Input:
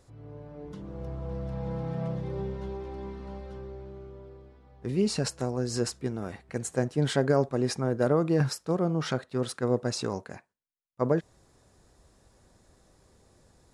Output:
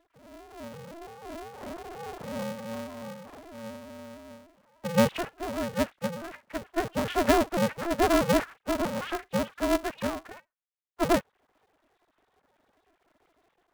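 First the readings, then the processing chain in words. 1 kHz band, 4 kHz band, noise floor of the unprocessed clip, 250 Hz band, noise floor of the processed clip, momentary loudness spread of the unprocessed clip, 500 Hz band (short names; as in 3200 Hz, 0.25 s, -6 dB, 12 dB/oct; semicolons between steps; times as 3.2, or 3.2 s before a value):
+7.0 dB, +1.0 dB, -65 dBFS, +0.5 dB, -76 dBFS, 18 LU, 0.0 dB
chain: sine-wave speech; polarity switched at an audio rate 170 Hz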